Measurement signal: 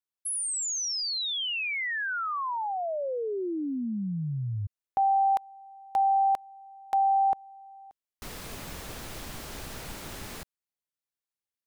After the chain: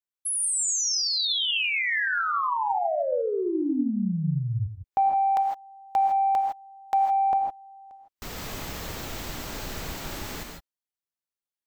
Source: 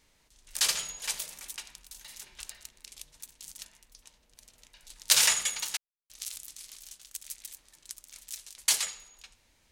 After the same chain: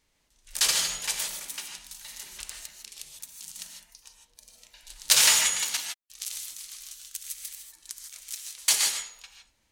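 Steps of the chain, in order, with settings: spectral noise reduction 9 dB; in parallel at -6.5 dB: saturation -19.5 dBFS; on the sum: gated-style reverb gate 180 ms rising, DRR 3 dB

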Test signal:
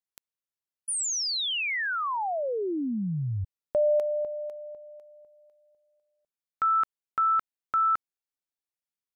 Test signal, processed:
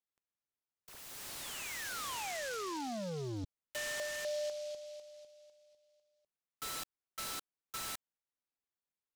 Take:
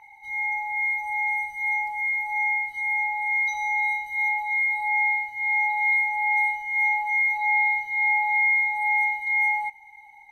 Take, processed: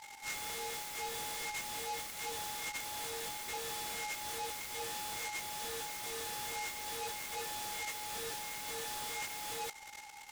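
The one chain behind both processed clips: compression 4:1, threshold -25 dBFS; wavefolder -32 dBFS; distance through air 80 m; delay time shaken by noise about 4.4 kHz, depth 0.065 ms; trim -1.5 dB

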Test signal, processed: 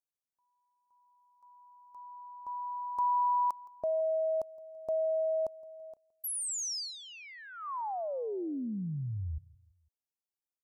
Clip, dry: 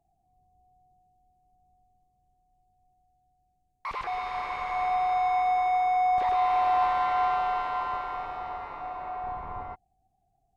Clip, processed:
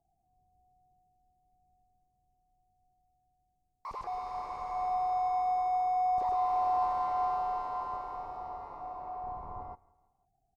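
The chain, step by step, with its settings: high-order bell 2.3 kHz -13.5 dB; feedback delay 167 ms, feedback 49%, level -23 dB; trim -4.5 dB

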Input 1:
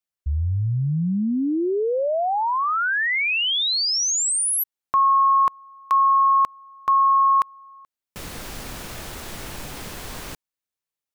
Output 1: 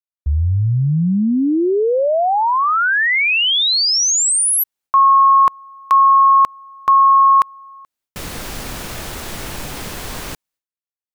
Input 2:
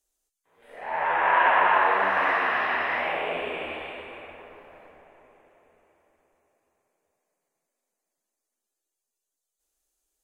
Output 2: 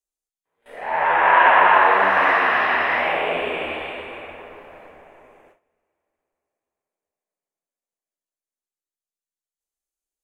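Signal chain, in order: gate with hold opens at -46 dBFS, closes at -53 dBFS, hold 186 ms, range -19 dB; trim +6.5 dB

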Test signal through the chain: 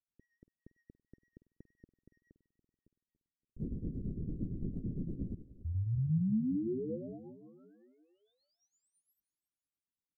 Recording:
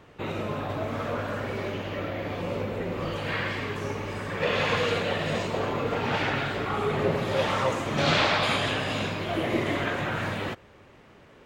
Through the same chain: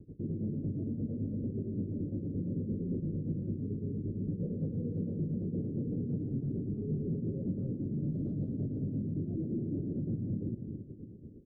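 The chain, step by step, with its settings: in parallel at -5 dB: sine folder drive 10 dB, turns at -10 dBFS; on the sum: tremolo 8.8 Hz, depth 84%; inverse Chebyshev low-pass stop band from 900 Hz, stop band 50 dB; feedback delay 284 ms, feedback 52%, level -17 dB; peak limiter -30 dBFS; rotary cabinet horn 6 Hz; dynamic bell 180 Hz, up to +8 dB, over -51 dBFS, Q 0.79; trim -2.5 dB

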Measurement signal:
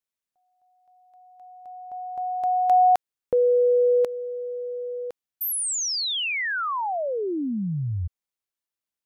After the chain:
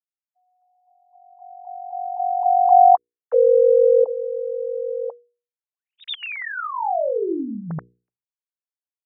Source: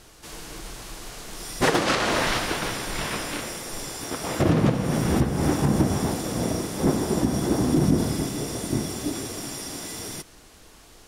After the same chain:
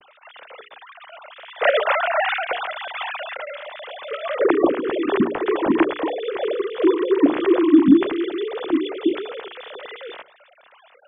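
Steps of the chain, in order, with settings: formants replaced by sine waves; hum notches 60/120/180/240/300/360/420/480 Hz; trim +4.5 dB

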